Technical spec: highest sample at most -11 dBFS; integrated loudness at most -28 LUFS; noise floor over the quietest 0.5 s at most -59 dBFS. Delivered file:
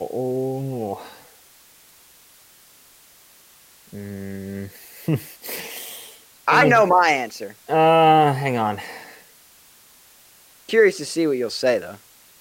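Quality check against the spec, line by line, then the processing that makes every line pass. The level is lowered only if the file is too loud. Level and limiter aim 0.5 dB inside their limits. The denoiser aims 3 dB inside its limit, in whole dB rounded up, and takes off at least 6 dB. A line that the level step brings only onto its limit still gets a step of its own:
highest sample -5.0 dBFS: fail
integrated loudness -19.5 LUFS: fail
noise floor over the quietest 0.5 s -51 dBFS: fail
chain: trim -9 dB

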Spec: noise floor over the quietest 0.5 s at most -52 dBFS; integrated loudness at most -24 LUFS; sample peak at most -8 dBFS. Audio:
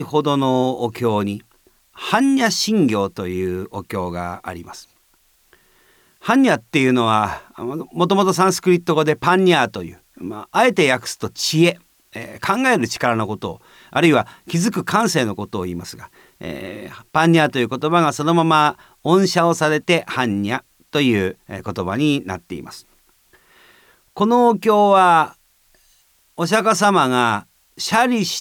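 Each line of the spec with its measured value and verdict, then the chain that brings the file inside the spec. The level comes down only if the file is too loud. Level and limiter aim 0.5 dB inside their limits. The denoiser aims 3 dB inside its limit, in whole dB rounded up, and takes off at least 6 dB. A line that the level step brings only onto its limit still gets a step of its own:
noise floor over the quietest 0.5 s -59 dBFS: pass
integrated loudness -17.5 LUFS: fail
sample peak -3.5 dBFS: fail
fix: trim -7 dB

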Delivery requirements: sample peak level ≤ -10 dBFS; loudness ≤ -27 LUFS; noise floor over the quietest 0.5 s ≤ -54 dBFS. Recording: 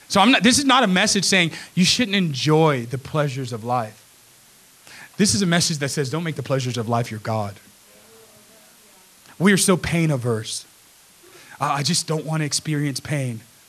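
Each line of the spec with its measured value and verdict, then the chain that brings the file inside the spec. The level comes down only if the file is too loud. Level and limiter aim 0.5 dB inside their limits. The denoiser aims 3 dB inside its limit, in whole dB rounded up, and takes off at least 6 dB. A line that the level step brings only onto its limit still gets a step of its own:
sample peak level -3.5 dBFS: fail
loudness -20.0 LUFS: fail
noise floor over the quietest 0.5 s -51 dBFS: fail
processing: trim -7.5 dB

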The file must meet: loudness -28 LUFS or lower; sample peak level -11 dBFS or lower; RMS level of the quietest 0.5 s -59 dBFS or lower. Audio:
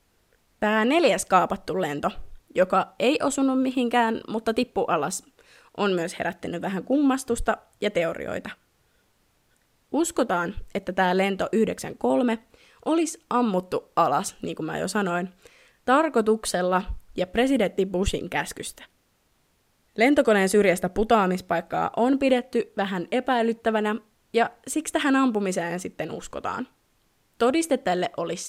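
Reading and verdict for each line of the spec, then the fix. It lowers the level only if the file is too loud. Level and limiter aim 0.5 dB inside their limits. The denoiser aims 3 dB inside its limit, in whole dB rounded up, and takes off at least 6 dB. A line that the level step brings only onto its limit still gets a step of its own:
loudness -24.5 LUFS: fail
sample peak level -6.0 dBFS: fail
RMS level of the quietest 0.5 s -67 dBFS: pass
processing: trim -4 dB; peak limiter -11.5 dBFS

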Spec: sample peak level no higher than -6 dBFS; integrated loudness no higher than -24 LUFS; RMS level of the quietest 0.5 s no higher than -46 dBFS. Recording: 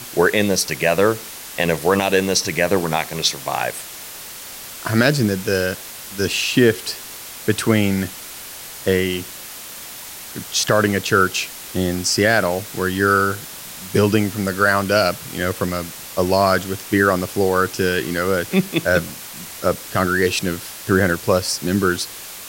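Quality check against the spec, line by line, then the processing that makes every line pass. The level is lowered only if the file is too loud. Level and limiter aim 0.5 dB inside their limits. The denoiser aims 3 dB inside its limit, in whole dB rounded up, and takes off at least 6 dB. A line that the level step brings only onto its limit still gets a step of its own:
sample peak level -2.5 dBFS: fail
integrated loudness -19.0 LUFS: fail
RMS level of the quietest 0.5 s -35 dBFS: fail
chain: noise reduction 9 dB, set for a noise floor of -35 dBFS; trim -5.5 dB

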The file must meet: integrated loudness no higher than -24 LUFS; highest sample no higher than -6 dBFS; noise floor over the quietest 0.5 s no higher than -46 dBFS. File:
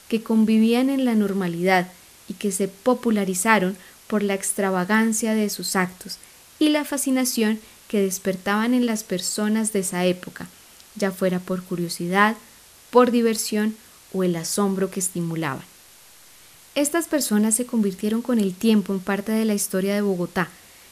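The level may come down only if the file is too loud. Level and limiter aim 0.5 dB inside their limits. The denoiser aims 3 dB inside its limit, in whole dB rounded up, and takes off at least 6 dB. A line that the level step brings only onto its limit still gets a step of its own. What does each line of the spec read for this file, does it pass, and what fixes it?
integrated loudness -22.0 LUFS: fail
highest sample -3.0 dBFS: fail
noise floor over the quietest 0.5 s -49 dBFS: pass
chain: trim -2.5 dB; peak limiter -6.5 dBFS

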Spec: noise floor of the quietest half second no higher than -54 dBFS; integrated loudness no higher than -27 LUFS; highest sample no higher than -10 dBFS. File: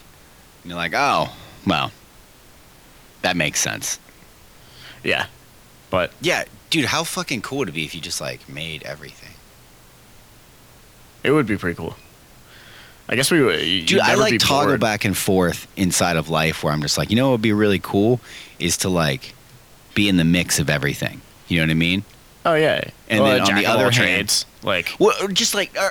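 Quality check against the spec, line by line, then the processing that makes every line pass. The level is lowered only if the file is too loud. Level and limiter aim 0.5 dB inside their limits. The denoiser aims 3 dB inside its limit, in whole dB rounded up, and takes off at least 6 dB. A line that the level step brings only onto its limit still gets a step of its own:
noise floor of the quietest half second -48 dBFS: fail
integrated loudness -19.5 LUFS: fail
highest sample -5.5 dBFS: fail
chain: trim -8 dB

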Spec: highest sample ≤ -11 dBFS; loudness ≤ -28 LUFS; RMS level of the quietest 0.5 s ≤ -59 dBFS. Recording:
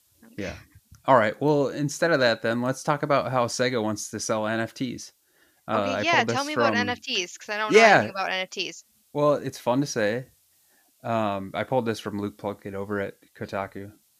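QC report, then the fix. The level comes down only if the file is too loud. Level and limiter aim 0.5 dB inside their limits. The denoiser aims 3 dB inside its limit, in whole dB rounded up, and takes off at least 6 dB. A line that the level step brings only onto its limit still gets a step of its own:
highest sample -3.0 dBFS: fail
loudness -24.5 LUFS: fail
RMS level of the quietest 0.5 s -64 dBFS: pass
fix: trim -4 dB; peak limiter -11.5 dBFS

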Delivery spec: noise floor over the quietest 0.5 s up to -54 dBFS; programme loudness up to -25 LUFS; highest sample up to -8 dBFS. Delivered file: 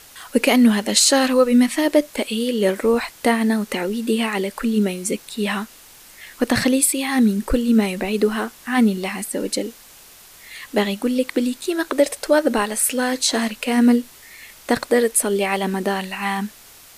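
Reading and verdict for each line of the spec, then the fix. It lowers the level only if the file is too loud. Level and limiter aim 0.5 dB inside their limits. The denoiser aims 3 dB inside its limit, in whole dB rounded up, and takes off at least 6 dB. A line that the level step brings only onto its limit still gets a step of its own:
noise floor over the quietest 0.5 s -46 dBFS: fail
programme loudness -19.5 LUFS: fail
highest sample -4.0 dBFS: fail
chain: noise reduction 6 dB, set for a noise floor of -46 dBFS; trim -6 dB

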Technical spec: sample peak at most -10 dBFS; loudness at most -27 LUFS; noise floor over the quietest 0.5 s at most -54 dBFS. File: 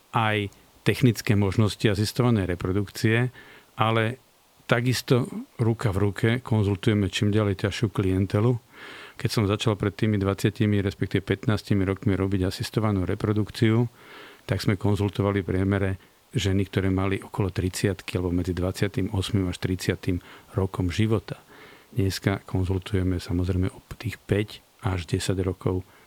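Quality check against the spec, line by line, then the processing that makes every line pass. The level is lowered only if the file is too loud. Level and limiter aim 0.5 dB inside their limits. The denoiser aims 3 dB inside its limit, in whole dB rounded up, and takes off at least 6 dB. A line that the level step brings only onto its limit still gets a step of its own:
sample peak -3.5 dBFS: fail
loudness -25.5 LUFS: fail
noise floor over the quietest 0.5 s -58 dBFS: pass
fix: trim -2 dB; peak limiter -10.5 dBFS

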